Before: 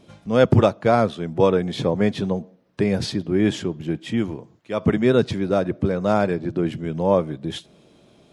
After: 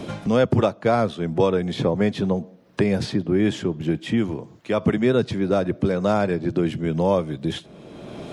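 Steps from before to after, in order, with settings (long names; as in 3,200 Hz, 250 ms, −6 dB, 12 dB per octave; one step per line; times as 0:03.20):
multiband upward and downward compressor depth 70%
level −1 dB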